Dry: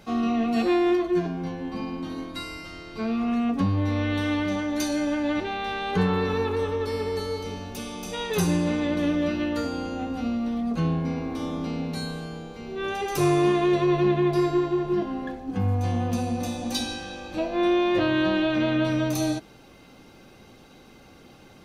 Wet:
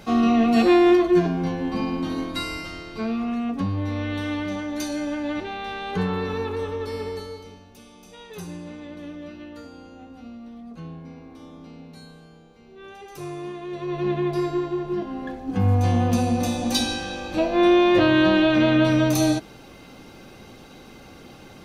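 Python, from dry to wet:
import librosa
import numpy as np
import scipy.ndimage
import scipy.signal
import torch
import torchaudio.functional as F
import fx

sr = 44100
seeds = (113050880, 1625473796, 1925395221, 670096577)

y = fx.gain(x, sr, db=fx.line((2.58, 6.0), (3.36, -2.0), (7.07, -2.0), (7.66, -13.0), (13.65, -13.0), (14.11, -2.0), (15.05, -2.0), (15.73, 5.5)))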